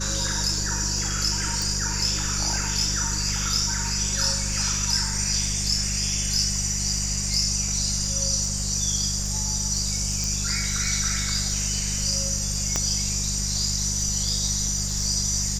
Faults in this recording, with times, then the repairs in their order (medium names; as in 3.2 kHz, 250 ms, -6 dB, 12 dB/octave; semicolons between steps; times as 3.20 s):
crackle 25 per s -31 dBFS
hum 50 Hz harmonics 4 -30 dBFS
1.62 s: pop
10.24 s: pop
12.76 s: pop -9 dBFS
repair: de-click; de-hum 50 Hz, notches 4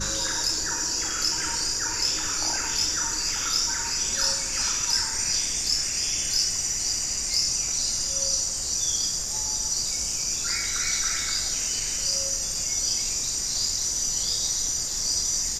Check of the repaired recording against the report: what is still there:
10.24 s: pop